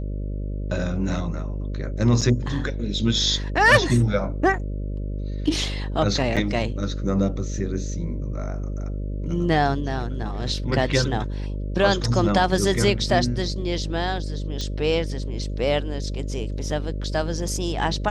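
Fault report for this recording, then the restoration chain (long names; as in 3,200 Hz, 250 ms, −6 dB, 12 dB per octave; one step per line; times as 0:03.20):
mains buzz 50 Hz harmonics 12 −28 dBFS
0:02.21–0:02.22: drop-out 5.8 ms
0:06.36–0:06.37: drop-out 6.9 ms
0:14.61: click −16 dBFS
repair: click removal
hum removal 50 Hz, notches 12
repair the gap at 0:02.21, 5.8 ms
repair the gap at 0:06.36, 6.9 ms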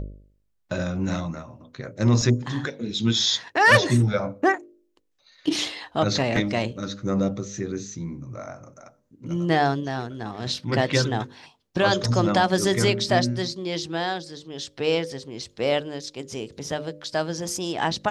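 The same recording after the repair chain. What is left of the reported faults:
none of them is left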